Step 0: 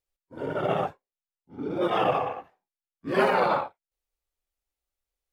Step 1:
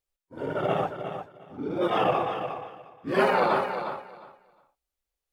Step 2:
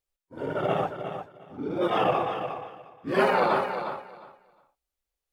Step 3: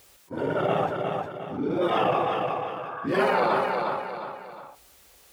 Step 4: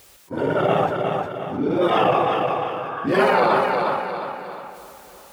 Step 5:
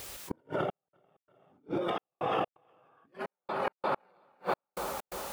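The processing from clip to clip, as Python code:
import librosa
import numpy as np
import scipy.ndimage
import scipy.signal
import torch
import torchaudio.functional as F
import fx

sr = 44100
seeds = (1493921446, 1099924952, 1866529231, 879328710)

y1 = fx.echo_feedback(x, sr, ms=356, feedback_pct=18, wet_db=-8.5)
y2 = y1
y3 = scipy.signal.sosfilt(scipy.signal.butter(2, 81.0, 'highpass', fs=sr, output='sos'), y2)
y3 = fx.spec_repair(y3, sr, seeds[0], start_s=2.77, length_s=0.28, low_hz=650.0, high_hz=1700.0, source='both')
y3 = fx.env_flatten(y3, sr, amount_pct=50)
y3 = F.gain(torch.from_numpy(y3), -1.5).numpy()
y4 = fx.echo_feedback(y3, sr, ms=659, feedback_pct=33, wet_db=-17)
y4 = F.gain(torch.from_numpy(y4), 5.5).numpy()
y5 = fx.over_compress(y4, sr, threshold_db=-28.0, ratio=-1.0)
y5 = fx.gate_flip(y5, sr, shuts_db=-18.0, range_db=-41)
y5 = fx.step_gate(y5, sr, bpm=129, pattern='xxxxxx..xx.', floor_db=-60.0, edge_ms=4.5)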